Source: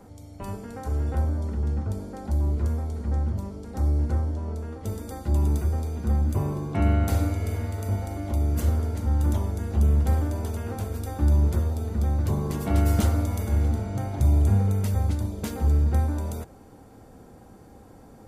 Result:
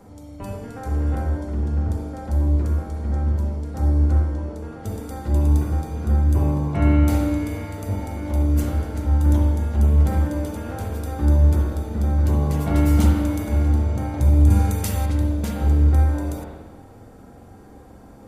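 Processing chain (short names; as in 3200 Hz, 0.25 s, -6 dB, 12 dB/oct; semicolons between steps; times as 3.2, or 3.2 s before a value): 14.5–15.06 high shelf 2200 Hz +11 dB; spring tank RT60 1.3 s, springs 44/54 ms, chirp 40 ms, DRR 0 dB; gain +1 dB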